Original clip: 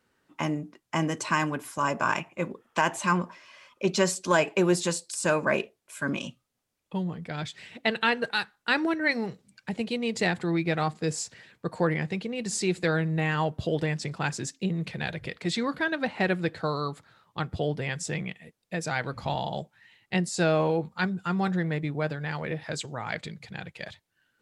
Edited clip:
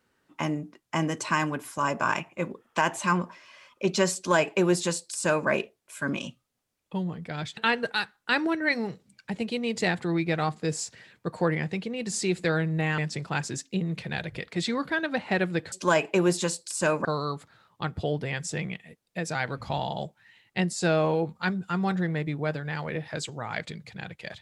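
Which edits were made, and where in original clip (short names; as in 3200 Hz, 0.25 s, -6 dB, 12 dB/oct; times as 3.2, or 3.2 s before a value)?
4.15–5.48 copy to 16.61
7.57–7.96 cut
13.37–13.87 cut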